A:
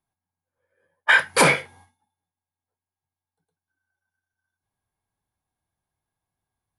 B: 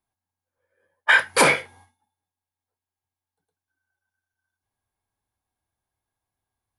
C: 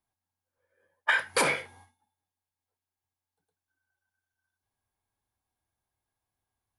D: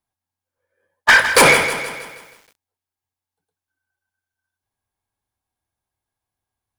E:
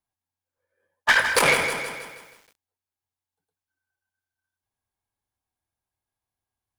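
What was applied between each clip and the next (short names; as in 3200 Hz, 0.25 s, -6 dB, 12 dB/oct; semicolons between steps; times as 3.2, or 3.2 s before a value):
bell 160 Hz -8.5 dB 0.44 oct
compressor 6:1, threshold -20 dBFS, peak gain reduction 8.5 dB; gain -2 dB
sample leveller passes 3; lo-fi delay 0.159 s, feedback 55%, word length 8-bit, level -10 dB; gain +7.5 dB
core saturation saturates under 870 Hz; gain -4.5 dB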